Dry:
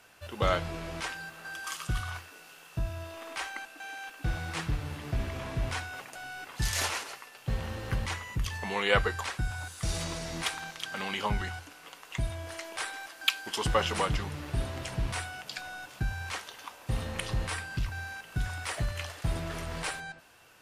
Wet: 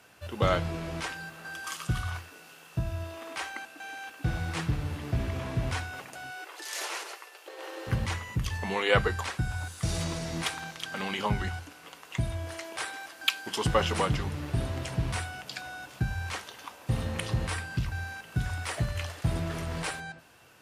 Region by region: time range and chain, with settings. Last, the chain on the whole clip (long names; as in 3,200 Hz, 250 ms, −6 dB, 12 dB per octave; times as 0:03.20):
0:06.30–0:07.87: downward compressor 4 to 1, threshold −31 dBFS + linear-phase brick-wall high-pass 300 Hz
whole clip: high-pass filter 69 Hz; low-shelf EQ 350 Hz +7 dB; mains-hum notches 50/100/150/200 Hz